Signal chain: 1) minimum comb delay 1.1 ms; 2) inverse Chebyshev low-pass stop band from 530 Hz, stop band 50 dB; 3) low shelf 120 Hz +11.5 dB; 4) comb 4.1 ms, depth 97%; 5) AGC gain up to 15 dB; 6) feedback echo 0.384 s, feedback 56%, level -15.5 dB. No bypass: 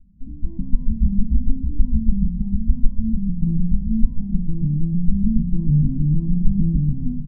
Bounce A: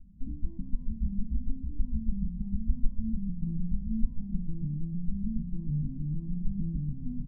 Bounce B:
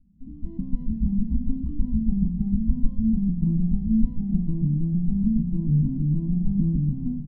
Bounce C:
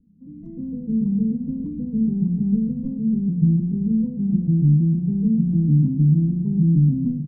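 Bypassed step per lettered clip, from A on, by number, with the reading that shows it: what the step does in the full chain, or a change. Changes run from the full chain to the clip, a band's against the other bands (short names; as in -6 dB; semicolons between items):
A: 5, crest factor change +2.0 dB; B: 3, loudness change -2.5 LU; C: 1, crest factor change -2.5 dB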